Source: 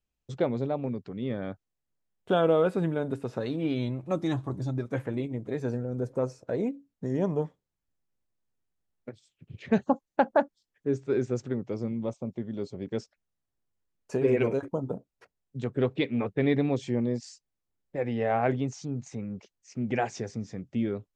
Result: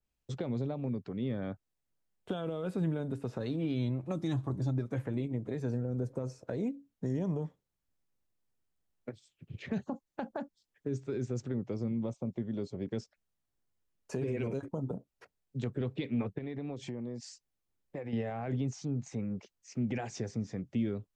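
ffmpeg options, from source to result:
ffmpeg -i in.wav -filter_complex "[0:a]asettb=1/sr,asplit=3[link_01][link_02][link_03];[link_01]atrim=end=16.384[link_04];[link_02]atrim=start=16.38:end=18.13,asetpts=PTS-STARTPTS,afade=type=in:duration=0.004:curve=qsin,afade=type=out:start_time=1.746:duration=0.004:curve=qsin,acompressor=threshold=-34dB:ratio=10:attack=3.2:release=140:knee=1:detection=peak[link_05];[link_03]atrim=start=18.126[link_06];[link_04][link_05]acrossfade=duration=0.004:curve1=hsin:curve2=qsin[link_07];[link_07][link_06]acrossfade=duration=0.004:curve1=qsin:curve2=hsin,alimiter=limit=-21dB:level=0:latency=1:release=32,acrossover=split=240|3000[link_08][link_09][link_10];[link_09]acompressor=threshold=-37dB:ratio=6[link_11];[link_08][link_11][link_10]amix=inputs=3:normalize=0,adynamicequalizer=threshold=0.002:dfrequency=2200:dqfactor=0.7:tfrequency=2200:tqfactor=0.7:attack=5:release=100:ratio=0.375:range=2:mode=cutabove:tftype=highshelf" out.wav

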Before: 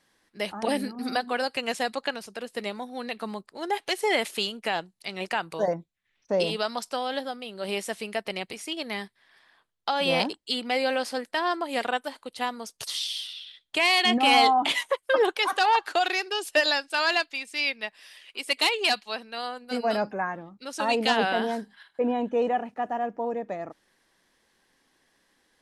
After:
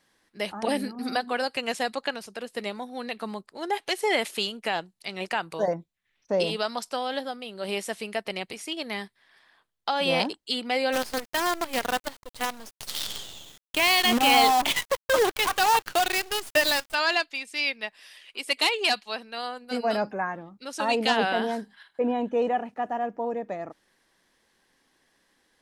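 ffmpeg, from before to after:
ffmpeg -i in.wav -filter_complex "[0:a]asplit=3[link_01][link_02][link_03];[link_01]afade=type=out:start_time=10.92:duration=0.02[link_04];[link_02]acrusher=bits=5:dc=4:mix=0:aa=0.000001,afade=type=in:start_time=10.92:duration=0.02,afade=type=out:start_time=16.93:duration=0.02[link_05];[link_03]afade=type=in:start_time=16.93:duration=0.02[link_06];[link_04][link_05][link_06]amix=inputs=3:normalize=0" out.wav

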